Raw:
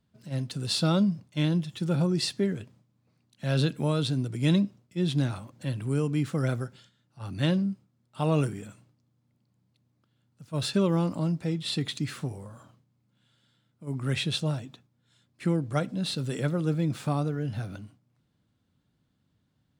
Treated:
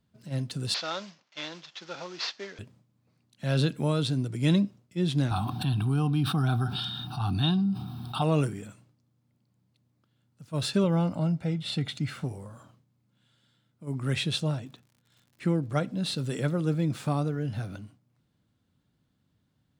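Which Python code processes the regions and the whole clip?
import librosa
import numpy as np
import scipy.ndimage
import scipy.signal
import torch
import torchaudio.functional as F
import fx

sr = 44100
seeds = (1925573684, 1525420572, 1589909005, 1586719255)

y = fx.chain(x, sr, fx.cvsd(bps=32000),
    fx.highpass(hz=750.0, slope=12), at=(0.74, 2.59))
y = fx.chain(y, sr, fx.fixed_phaser(hz=2000.0, stages=6),
    fx.small_body(hz=(750.0, 3700.0), ring_ms=60, db=17),
    fx.env_flatten(amount_pct=70), at=(5.31, 8.22))
y = fx.chain(y, sr, fx.bass_treble(bass_db=0, treble_db=-7),
    fx.comb(ms=1.4, depth=0.43), at=(10.84, 12.24))
y = fx.high_shelf(y, sr, hz=7600.0, db=-7.0, at=(14.46, 15.97), fade=0.02)
y = fx.dmg_crackle(y, sr, seeds[0], per_s=100.0, level_db=-50.0, at=(14.46, 15.97), fade=0.02)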